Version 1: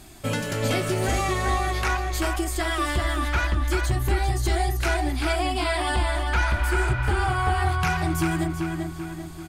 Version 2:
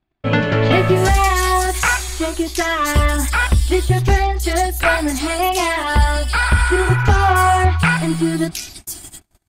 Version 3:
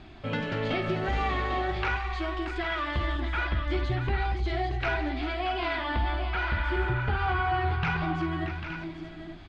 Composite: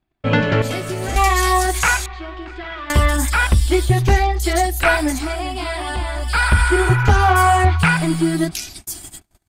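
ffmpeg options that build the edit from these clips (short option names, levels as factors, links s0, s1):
-filter_complex "[0:a]asplit=2[s0][s1];[1:a]asplit=4[s2][s3][s4][s5];[s2]atrim=end=0.622[s6];[s0]atrim=start=0.618:end=1.162[s7];[s3]atrim=start=1.158:end=2.062[s8];[2:a]atrim=start=2.058:end=2.902[s9];[s4]atrim=start=2.898:end=5.34[s10];[s1]atrim=start=5.1:end=6.37[s11];[s5]atrim=start=6.13[s12];[s6][s7]acrossfade=d=0.004:c1=hsin:c2=hsin[s13];[s13][s8]acrossfade=d=0.004:c1=hsin:c2=hsin[s14];[s14][s9]acrossfade=d=0.004:c1=hsin:c2=hsin[s15];[s15][s10]acrossfade=d=0.004:c1=hsin:c2=hsin[s16];[s16][s11]acrossfade=d=0.24:c1=tri:c2=tri[s17];[s17][s12]acrossfade=d=0.24:c1=tri:c2=tri"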